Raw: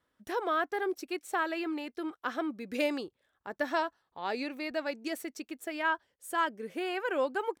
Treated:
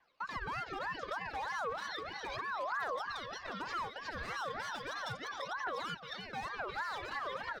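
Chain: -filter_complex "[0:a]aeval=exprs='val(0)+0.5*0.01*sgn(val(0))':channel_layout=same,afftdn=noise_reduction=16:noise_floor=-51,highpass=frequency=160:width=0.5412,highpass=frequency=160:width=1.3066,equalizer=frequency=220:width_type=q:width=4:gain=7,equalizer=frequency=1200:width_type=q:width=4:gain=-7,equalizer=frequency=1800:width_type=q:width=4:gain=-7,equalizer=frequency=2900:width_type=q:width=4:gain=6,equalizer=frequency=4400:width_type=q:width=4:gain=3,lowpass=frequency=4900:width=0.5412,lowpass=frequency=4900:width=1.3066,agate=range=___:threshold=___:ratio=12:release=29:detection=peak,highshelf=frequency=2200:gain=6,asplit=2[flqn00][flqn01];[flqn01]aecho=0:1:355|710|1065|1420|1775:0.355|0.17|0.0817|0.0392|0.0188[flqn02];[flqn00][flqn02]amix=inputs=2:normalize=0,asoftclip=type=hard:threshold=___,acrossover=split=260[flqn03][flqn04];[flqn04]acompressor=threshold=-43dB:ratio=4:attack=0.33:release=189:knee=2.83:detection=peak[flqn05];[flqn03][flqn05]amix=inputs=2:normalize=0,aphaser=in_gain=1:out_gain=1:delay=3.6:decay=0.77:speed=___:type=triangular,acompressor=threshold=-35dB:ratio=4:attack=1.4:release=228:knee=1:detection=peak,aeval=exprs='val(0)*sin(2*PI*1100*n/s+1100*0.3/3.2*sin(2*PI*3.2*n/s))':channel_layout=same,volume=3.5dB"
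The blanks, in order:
-31dB, -46dB, -27.5dB, 0.35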